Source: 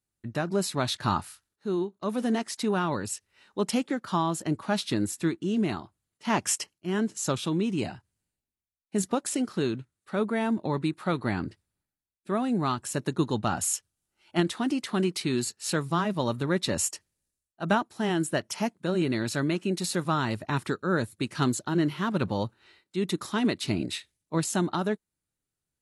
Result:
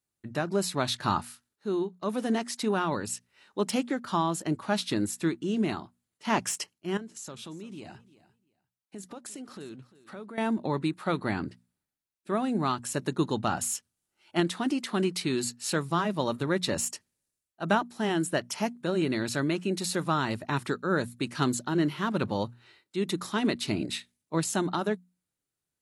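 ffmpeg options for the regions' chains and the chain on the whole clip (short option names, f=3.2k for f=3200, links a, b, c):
-filter_complex "[0:a]asettb=1/sr,asplit=3[a][b][c];[a]atrim=end=6.974[d];[b]atrim=start=6.97:end=10.38,asetpts=PTS-STARTPTS,afade=t=in:d=0.004:c=qsin,afade=t=out:st=3.406:d=0.004:c=qsin,acompressor=threshold=-40dB:ratio=4:attack=3.2:release=140:knee=1:detection=peak,aecho=1:1:347|694:0.126|0.0227,atrim=end_sample=150381[e];[c]atrim=start=10.376[f];[d][e]acrossfade=d=0.004:c1=hsin:c2=qsin[g];[g][f]acrossfade=d=0.004:c1=qsin:c2=hsin,deesser=0.45,lowshelf=f=73:g=-9.5,bandreject=f=60:t=h:w=6,bandreject=f=120:t=h:w=6,bandreject=f=180:t=h:w=6,bandreject=f=240:t=h:w=6"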